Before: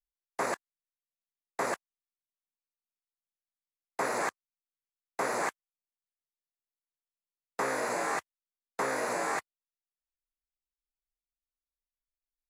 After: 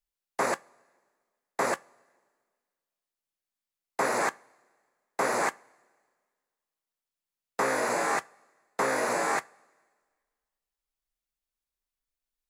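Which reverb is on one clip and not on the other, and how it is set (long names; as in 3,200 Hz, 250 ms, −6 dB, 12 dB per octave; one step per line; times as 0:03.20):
coupled-rooms reverb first 0.2 s, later 1.7 s, from −21 dB, DRR 16.5 dB
level +4 dB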